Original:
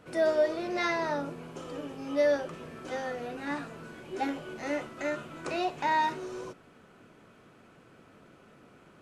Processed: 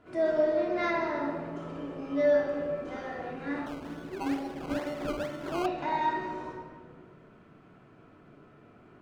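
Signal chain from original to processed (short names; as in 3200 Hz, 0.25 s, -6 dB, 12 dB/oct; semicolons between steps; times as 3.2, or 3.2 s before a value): reverb RT60 1.8 s, pre-delay 3 ms, DRR -3.5 dB; 3.66–5.66 decimation with a swept rate 17×, swing 100% 2.2 Hz; LPF 2000 Hz 6 dB/oct; gain -4.5 dB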